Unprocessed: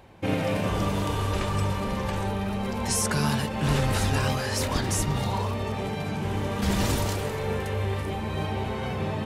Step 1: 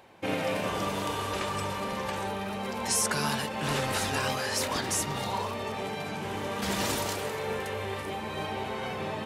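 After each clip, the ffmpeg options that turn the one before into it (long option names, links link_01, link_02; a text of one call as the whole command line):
ffmpeg -i in.wav -af "highpass=frequency=420:poles=1" out.wav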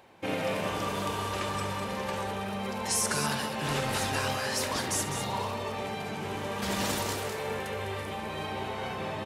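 ffmpeg -i in.wav -af "aecho=1:1:70|203:0.211|0.376,volume=-1.5dB" out.wav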